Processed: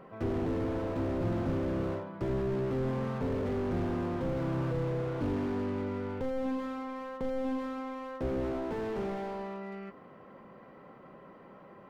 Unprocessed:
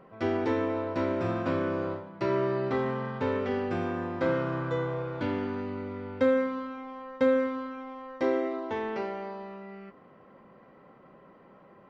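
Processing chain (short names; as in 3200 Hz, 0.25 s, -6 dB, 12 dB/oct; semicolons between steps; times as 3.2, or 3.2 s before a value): slew limiter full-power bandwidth 8.4 Hz; gain +2.5 dB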